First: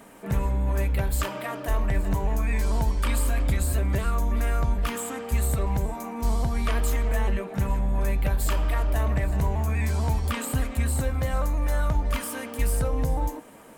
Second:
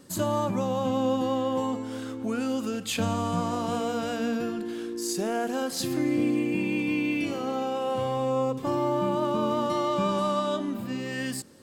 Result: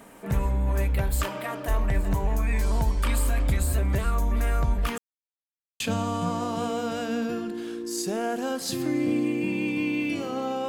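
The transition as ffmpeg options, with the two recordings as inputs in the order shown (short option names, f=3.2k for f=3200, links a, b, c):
-filter_complex "[0:a]apad=whole_dur=10.68,atrim=end=10.68,asplit=2[a][b];[a]atrim=end=4.98,asetpts=PTS-STARTPTS,afade=t=out:st=4.976:d=0.004:c=hsin[c];[b]atrim=start=4.98:end=5.8,asetpts=PTS-STARTPTS,volume=0[d];[1:a]atrim=start=2.91:end=7.79,asetpts=PTS-STARTPTS,afade=t=in:d=0.004:c=hsin[e];[c][d][e]concat=n=3:v=0:a=1"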